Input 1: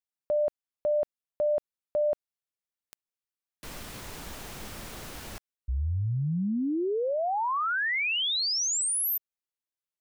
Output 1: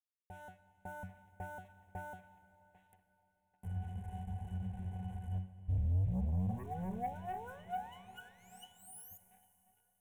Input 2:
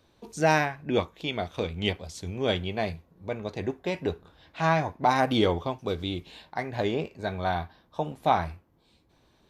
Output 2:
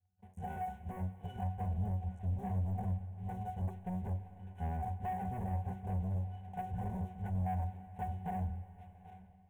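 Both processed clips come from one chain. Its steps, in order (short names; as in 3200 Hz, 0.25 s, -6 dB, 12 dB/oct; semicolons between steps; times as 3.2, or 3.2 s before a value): cycle switcher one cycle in 2, muted; in parallel at -1.5 dB: compressor, threshold -42 dBFS; on the sum: octave resonator F#, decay 0.28 s; limiter -36 dBFS; tape echo 0.793 s, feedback 55%, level -18.5 dB, low-pass 2900 Hz; AGC gain up to 10 dB; treble ducked by the level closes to 960 Hz, closed at -31.5 dBFS; EQ curve 120 Hz 0 dB, 1100 Hz -7 dB, 3600 Hz -23 dB, 9800 Hz +10 dB; sample leveller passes 2; high shelf 6800 Hz +11 dB; fixed phaser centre 1300 Hz, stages 6; Schroeder reverb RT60 3.7 s, combs from 32 ms, DRR 13 dB; gain -1.5 dB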